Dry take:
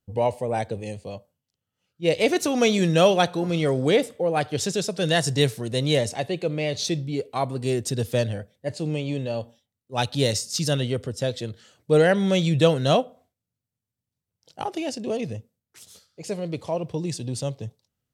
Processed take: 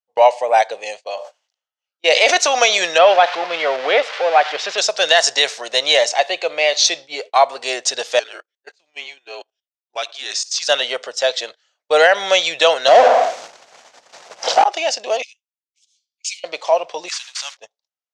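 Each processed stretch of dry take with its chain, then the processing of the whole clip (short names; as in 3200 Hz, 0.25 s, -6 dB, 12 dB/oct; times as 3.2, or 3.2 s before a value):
1.04–2.38 HPF 210 Hz 24 dB/oct + sustainer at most 83 dB/s
2.98–4.78 switching spikes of -15 dBFS + air absorption 370 m
8.19–10.69 frequency shift -160 Hz + level quantiser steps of 17 dB
12.88–14.64 power-law curve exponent 0.35 + tilt shelf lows +8 dB, about 900 Hz
15.22–16.44 rippled Chebyshev high-pass 2200 Hz, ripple 3 dB + three-band expander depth 70%
17.08–17.57 delta modulation 64 kbps, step -44 dBFS + HPF 1200 Hz 24 dB/oct + high shelf 8900 Hz +11 dB
whole clip: Chebyshev band-pass 660–6500 Hz, order 3; gate -48 dBFS, range -24 dB; maximiser +16 dB; gain -1 dB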